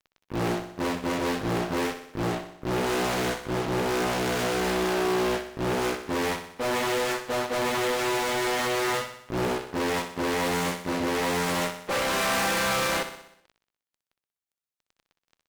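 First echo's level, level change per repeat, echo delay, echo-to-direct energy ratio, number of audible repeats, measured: -10.0 dB, -5.0 dB, 62 ms, -8.5 dB, 6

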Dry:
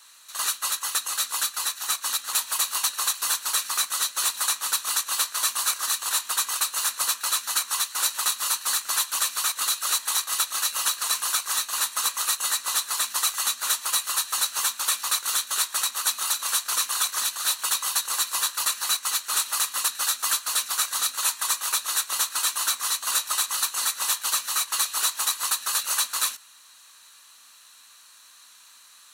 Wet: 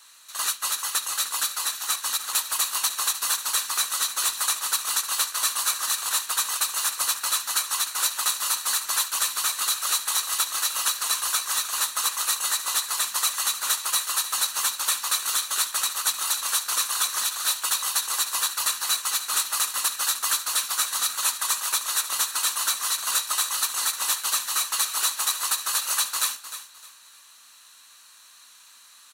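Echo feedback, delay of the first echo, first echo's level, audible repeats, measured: 27%, 0.306 s, -12.0 dB, 3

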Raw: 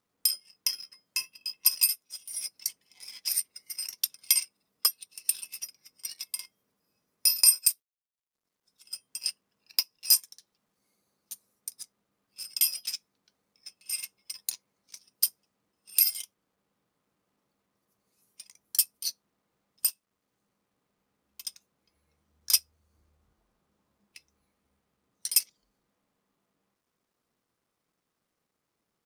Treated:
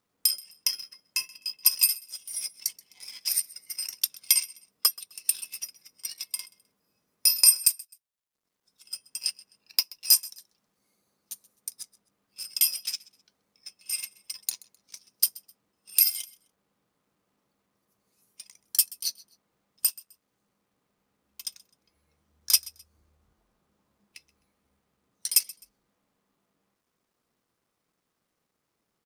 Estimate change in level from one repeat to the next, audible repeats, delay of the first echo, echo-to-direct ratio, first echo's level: -11.0 dB, 2, 0.129 s, -21.5 dB, -22.0 dB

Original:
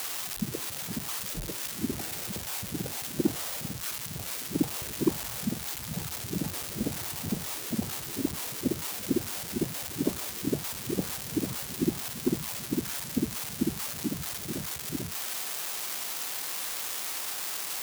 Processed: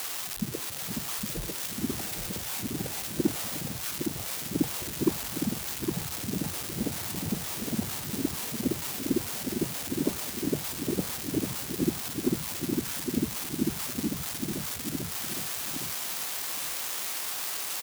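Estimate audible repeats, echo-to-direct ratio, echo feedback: 2, -6.0 dB, 21%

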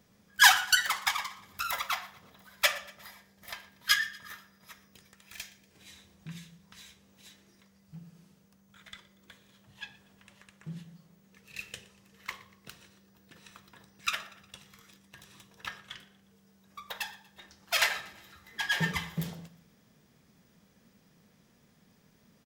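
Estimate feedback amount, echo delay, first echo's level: 51%, 0.119 s, -21.0 dB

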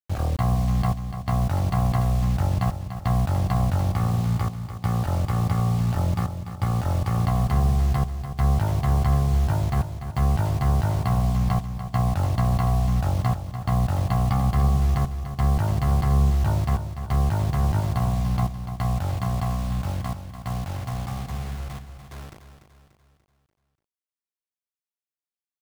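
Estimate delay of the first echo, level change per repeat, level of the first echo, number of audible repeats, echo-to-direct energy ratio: 0.292 s, -6.5 dB, -10.0 dB, 4, -9.0 dB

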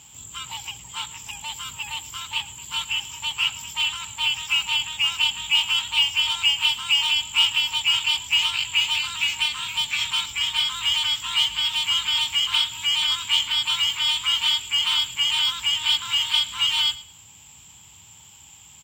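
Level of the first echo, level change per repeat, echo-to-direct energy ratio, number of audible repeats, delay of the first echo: -18.5 dB, -13.0 dB, -18.5 dB, 2, 0.111 s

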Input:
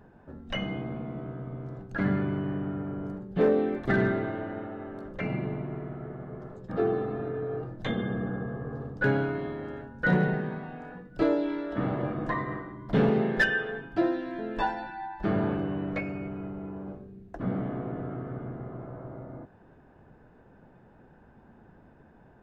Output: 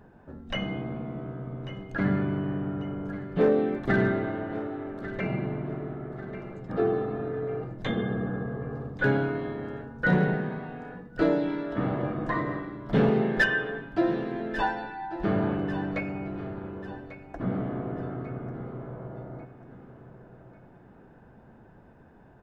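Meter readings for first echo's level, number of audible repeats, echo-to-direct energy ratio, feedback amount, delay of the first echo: -13.5 dB, 3, -12.5 dB, 41%, 1.143 s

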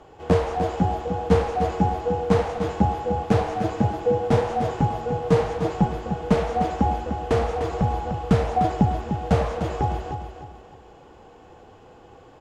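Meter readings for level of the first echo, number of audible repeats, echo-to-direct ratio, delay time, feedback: -8.0 dB, 3, -7.5 dB, 0.3 s, 34%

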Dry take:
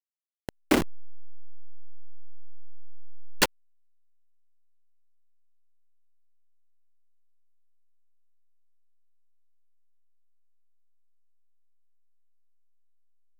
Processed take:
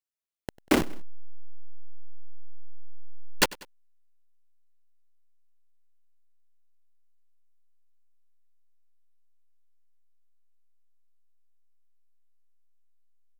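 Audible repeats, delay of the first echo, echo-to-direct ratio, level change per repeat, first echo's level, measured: 2, 96 ms, -20.0 dB, -5.0 dB, -21.0 dB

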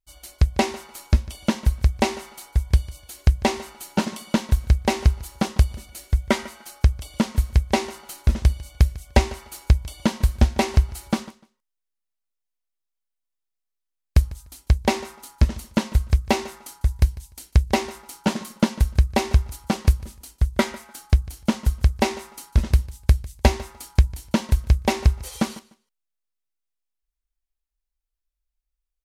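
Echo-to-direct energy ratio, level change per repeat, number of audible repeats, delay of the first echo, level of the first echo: -20.0 dB, -14.5 dB, 2, 0.149 s, -20.0 dB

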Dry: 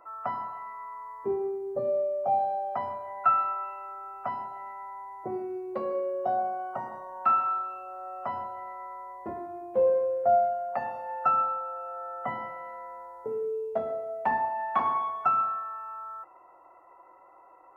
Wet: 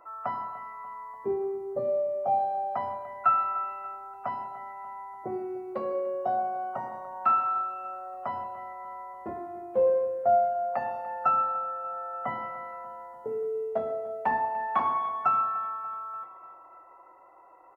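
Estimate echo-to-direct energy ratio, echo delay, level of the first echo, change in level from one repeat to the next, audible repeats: -16.0 dB, 0.293 s, -18.0 dB, -4.5 dB, 4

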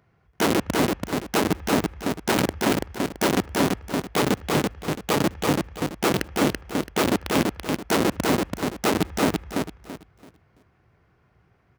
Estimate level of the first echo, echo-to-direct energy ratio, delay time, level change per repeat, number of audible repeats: -3.0 dB, -2.5 dB, 0.334 s, -11.5 dB, 3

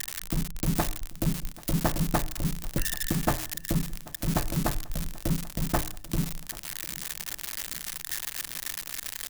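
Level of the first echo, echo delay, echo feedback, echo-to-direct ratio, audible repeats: -21.0 dB, 0.787 s, 56%, -19.5 dB, 3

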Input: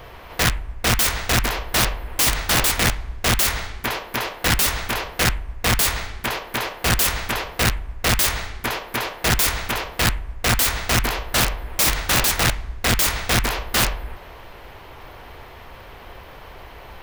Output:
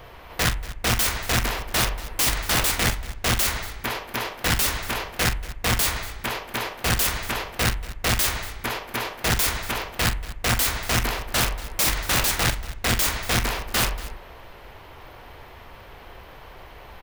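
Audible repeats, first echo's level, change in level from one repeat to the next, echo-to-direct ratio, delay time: 2, -12.0 dB, no steady repeat, -11.0 dB, 43 ms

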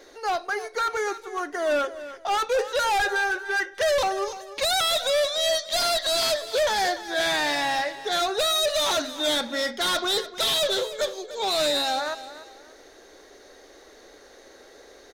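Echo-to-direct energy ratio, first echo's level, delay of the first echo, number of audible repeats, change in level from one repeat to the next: -14.0 dB, -14.5 dB, 0.295 s, 2, -10.0 dB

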